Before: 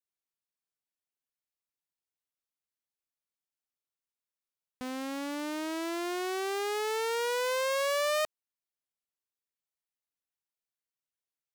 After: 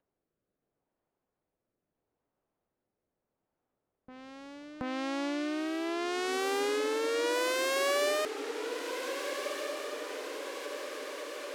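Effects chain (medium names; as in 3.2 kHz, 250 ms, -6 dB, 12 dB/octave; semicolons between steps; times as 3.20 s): rotary cabinet horn 0.75 Hz; level-controlled noise filter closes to 690 Hz, open at -30 dBFS; in parallel at -1.5 dB: peak limiter -31.5 dBFS, peak gain reduction 10.5 dB; on the sum: bass shelf 220 Hz -5.5 dB; on a send: echo that smears into a reverb 1562 ms, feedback 55%, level -7 dB; on the sum: upward compressor, threshold -34 dBFS; reverse echo 727 ms -13.5 dB; gate with hold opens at -51 dBFS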